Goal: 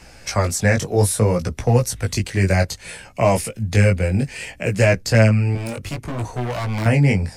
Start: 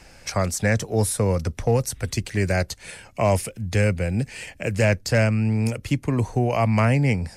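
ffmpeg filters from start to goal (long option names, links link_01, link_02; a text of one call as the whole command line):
ffmpeg -i in.wav -filter_complex "[0:a]asettb=1/sr,asplit=3[link_01][link_02][link_03];[link_01]atrim=end=5.554[link_04];[link_02]atrim=start=5.55:end=6.86,asetpts=PTS-STARTPTS,afade=type=in:duration=0.004:curve=qsin,afade=type=out:start_time=1.306:duration=0.004:curve=qsin,asoftclip=type=hard:threshold=-27.5dB[link_05];[link_03]atrim=start=6.856[link_06];[link_04][link_05]acrossfade=duration=0.004:curve1=hsin:curve2=qsin[link_07];[link_07][link_06]acrossfade=duration=0.004:curve1=qsin:curve2=hsin,flanger=delay=16:depth=5.1:speed=0.62,volume=7dB" out.wav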